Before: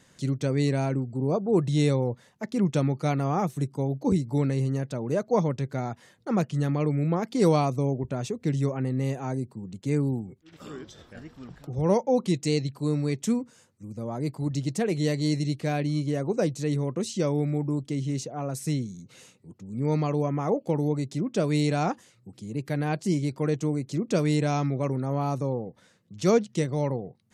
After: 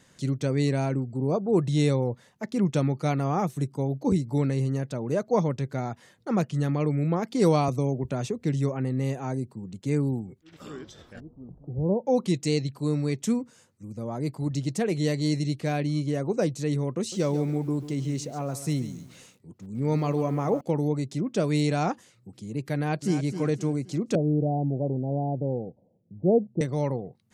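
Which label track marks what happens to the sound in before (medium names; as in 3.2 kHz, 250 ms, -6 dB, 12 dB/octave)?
7.680000	8.410000	three bands compressed up and down depth 40%
11.200000	12.060000	Gaussian low-pass sigma 13 samples
16.980000	20.610000	bit-crushed delay 140 ms, feedback 35%, word length 8-bit, level -13 dB
22.760000	23.240000	echo throw 260 ms, feedback 40%, level -10 dB
24.150000	26.610000	steep low-pass 800 Hz 72 dB/octave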